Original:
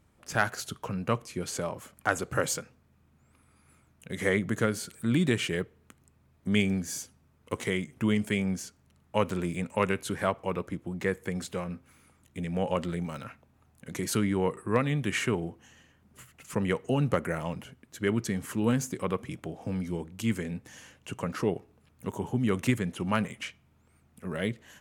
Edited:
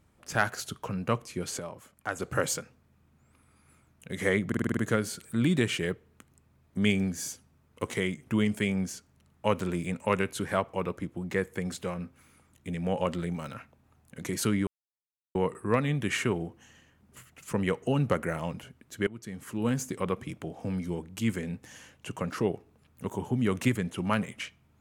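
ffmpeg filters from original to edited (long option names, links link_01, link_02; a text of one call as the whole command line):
ffmpeg -i in.wav -filter_complex "[0:a]asplit=11[link_01][link_02][link_03][link_04][link_05][link_06][link_07][link_08][link_09][link_10][link_11];[link_01]atrim=end=1.592[link_12];[link_02]atrim=start=1.588:end=2.202,asetpts=PTS-STARTPTS,volume=-6.5dB[link_13];[link_03]atrim=start=2.198:end=4.522[link_14];[link_04]atrim=start=4.468:end=4.522[link_15];[link_05]atrim=start=4.468:end=4.522[link_16];[link_06]atrim=start=4.468:end=4.522[link_17];[link_07]atrim=start=4.468:end=4.522[link_18];[link_08]atrim=start=4.468:end=4.522[link_19];[link_09]atrim=start=4.468:end=14.37,asetpts=PTS-STARTPTS,afade=type=out:start_time=9.898:duration=0.004:curve=hsin,apad=pad_dur=0.68[link_20];[link_10]atrim=start=14.37:end=18.09,asetpts=PTS-STARTPTS,afade=type=in:duration=0.004:curve=hsin,afade=type=out:start_time=3.716:duration=0.004:curve=hsin:silence=0.0891251[link_21];[link_11]atrim=start=18.09,asetpts=PTS-STARTPTS,afade=type=in:duration=0.82:silence=0.0891251[link_22];[link_12][link_13]acrossfade=duration=0.004:curve1=hsin:curve2=hsin[link_23];[link_23][link_14]acrossfade=duration=0.004:curve1=hsin:curve2=hsin[link_24];[link_24][link_15]acrossfade=duration=0.004:curve1=hsin:curve2=hsin[link_25];[link_25][link_16]acrossfade=duration=0.004:curve1=hsin:curve2=hsin[link_26];[link_26][link_17]acrossfade=duration=0.004:curve1=hsin:curve2=hsin[link_27];[link_27][link_18]acrossfade=duration=0.004:curve1=hsin:curve2=hsin[link_28];[link_28][link_19]acrossfade=duration=0.004:curve1=hsin:curve2=hsin[link_29];[link_20][link_21][link_22]concat=n=3:v=0:a=1[link_30];[link_29][link_30]acrossfade=duration=0.004:curve1=hsin:curve2=hsin" out.wav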